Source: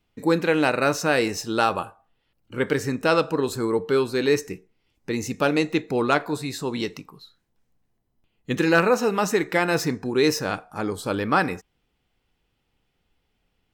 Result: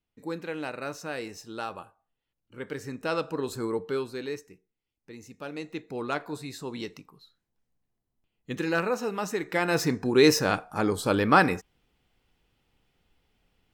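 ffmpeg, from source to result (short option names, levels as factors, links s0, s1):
-af "volume=5.01,afade=t=in:st=2.63:d=1.02:silence=0.398107,afade=t=out:st=3.65:d=0.82:silence=0.237137,afade=t=in:st=5.39:d=0.95:silence=0.316228,afade=t=in:st=9.4:d=0.79:silence=0.316228"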